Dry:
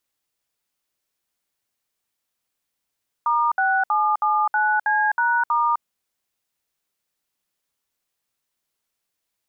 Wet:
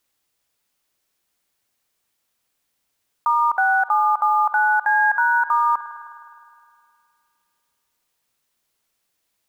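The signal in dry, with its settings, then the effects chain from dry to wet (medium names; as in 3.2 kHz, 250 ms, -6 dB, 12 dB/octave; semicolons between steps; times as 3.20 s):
DTMF "*6779C#*", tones 257 ms, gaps 63 ms, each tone -19.5 dBFS
block-companded coder 7-bit; spring tank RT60 2.4 s, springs 51 ms, chirp 20 ms, DRR 13 dB; in parallel at 0 dB: peak limiter -23.5 dBFS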